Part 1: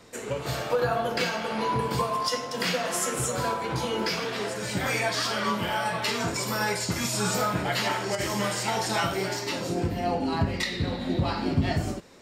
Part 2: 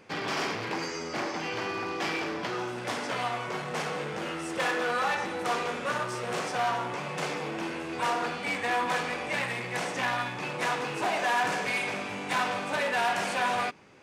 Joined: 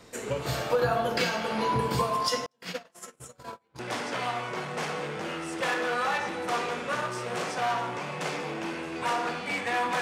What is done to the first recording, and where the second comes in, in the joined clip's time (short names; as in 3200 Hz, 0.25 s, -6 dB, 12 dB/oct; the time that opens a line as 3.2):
part 1
2.46–3.79 gate -24 dBFS, range -42 dB
3.79 switch to part 2 from 2.76 s